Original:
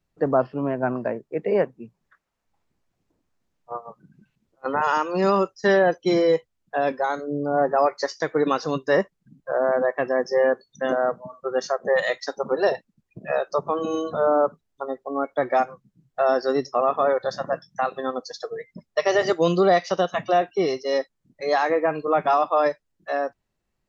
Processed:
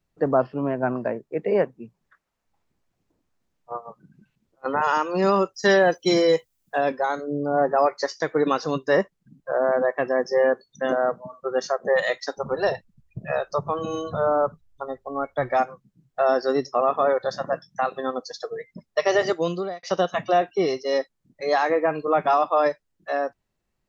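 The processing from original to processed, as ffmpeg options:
ffmpeg -i in.wav -filter_complex "[0:a]asettb=1/sr,asplit=3[link_01][link_02][link_03];[link_01]atrim=end=5.544[link_04];[link_02]atrim=start=5.54:end=6.81,asetpts=PTS-STARTPTS,afade=type=in:duration=0.004:curve=qsin,afade=type=out:start_time=1.266:duration=0.004:curve=qsin,aemphasis=mode=production:type=75kf[link_05];[link_03]atrim=start=6.806[link_06];[link_04][link_05]acrossfade=duration=0.004:curve1=hsin:curve2=qsin[link_07];[link_07][link_06]acrossfade=duration=0.004:curve1=qsin:curve2=hsin,asplit=3[link_08][link_09][link_10];[link_08]afade=type=out:start_time=12.37:duration=0.02[link_11];[link_09]asubboost=boost=9:cutoff=95,afade=type=in:start_time=12.37:duration=0.02,afade=type=out:start_time=15.58:duration=0.02[link_12];[link_10]afade=type=in:start_time=15.58:duration=0.02[link_13];[link_11][link_12][link_13]amix=inputs=3:normalize=0,asplit=2[link_14][link_15];[link_14]atrim=end=19.83,asetpts=PTS-STARTPTS,afade=type=out:start_time=19.18:duration=0.65[link_16];[link_15]atrim=start=19.83,asetpts=PTS-STARTPTS,afade=type=in:duration=0.004:curve=hsin[link_17];[link_16][link_17]concat=n=2:v=0:a=1" out.wav

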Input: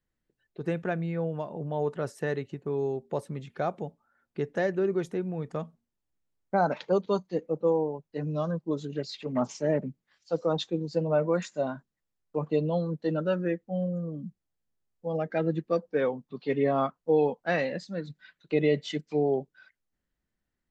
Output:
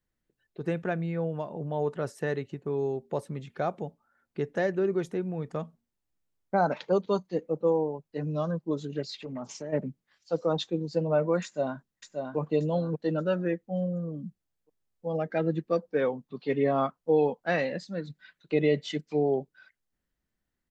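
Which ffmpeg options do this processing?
ffmpeg -i in.wav -filter_complex "[0:a]asplit=3[link_01][link_02][link_03];[link_01]afade=type=out:start_time=9.22:duration=0.02[link_04];[link_02]acompressor=threshold=-34dB:ratio=5:attack=3.2:release=140:knee=1:detection=peak,afade=type=in:start_time=9.22:duration=0.02,afade=type=out:start_time=9.72:duration=0.02[link_05];[link_03]afade=type=in:start_time=9.72:duration=0.02[link_06];[link_04][link_05][link_06]amix=inputs=3:normalize=0,asplit=2[link_07][link_08];[link_08]afade=type=in:start_time=11.44:duration=0.01,afade=type=out:start_time=12.37:duration=0.01,aecho=0:1:580|1160|1740|2320:0.562341|0.168702|0.0506107|0.0151832[link_09];[link_07][link_09]amix=inputs=2:normalize=0" out.wav

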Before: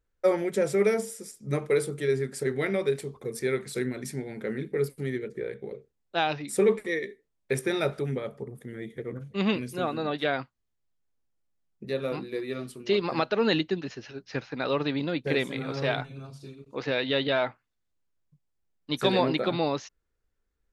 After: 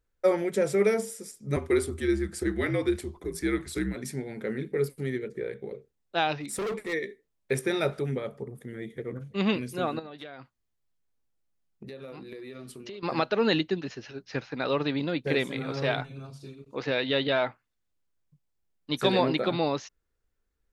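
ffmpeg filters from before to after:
ffmpeg -i in.wav -filter_complex "[0:a]asettb=1/sr,asplit=3[link_01][link_02][link_03];[link_01]atrim=end=1.564[link_04];[link_02]atrim=start=1.56:end=3.96,asetpts=PTS-STARTPTS,afade=type=in:duration=0.004:curve=qsin,afade=type=out:start_time=2.396:duration=0.004:curve=qsin,afreqshift=-60[link_05];[link_03]atrim=start=3.956[link_06];[link_04][link_05]acrossfade=duration=0.004:curve1=hsin:curve2=qsin[link_07];[link_07][link_06]acrossfade=duration=0.004:curve1=qsin:curve2=hsin,asplit=3[link_08][link_09][link_10];[link_08]afade=type=out:start_time=6.4:duration=0.02[link_11];[link_09]asoftclip=type=hard:threshold=-29dB,afade=type=in:start_time=6.4:duration=0.02,afade=type=out:start_time=6.92:duration=0.02[link_12];[link_10]afade=type=in:start_time=6.92:duration=0.02[link_13];[link_11][link_12][link_13]amix=inputs=3:normalize=0,asettb=1/sr,asplit=3[link_14][link_15][link_16];[link_14]atrim=end=9.994[link_17];[link_15]atrim=start=9.99:end=13.03,asetpts=PTS-STARTPTS,afade=type=in:duration=0.004:curve=qsin,afade=type=out:start_time=3.036:duration=0.004:curve=qsin,acompressor=threshold=-38dB:ratio=10:attack=3.2:release=140:knee=1:detection=peak[link_18];[link_16]atrim=start=13.026[link_19];[link_17][link_18]acrossfade=duration=0.004:curve1=hsin:curve2=qsin[link_20];[link_20][link_19]acrossfade=duration=0.004:curve1=qsin:curve2=hsin" out.wav

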